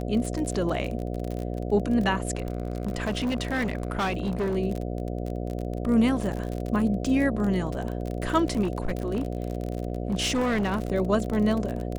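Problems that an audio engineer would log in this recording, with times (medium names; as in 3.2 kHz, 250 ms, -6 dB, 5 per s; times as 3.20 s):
buzz 60 Hz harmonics 12 -31 dBFS
crackle 36 per s -29 dBFS
2.35–4.57 s: clipped -23 dBFS
8.62–10.82 s: clipped -21.5 dBFS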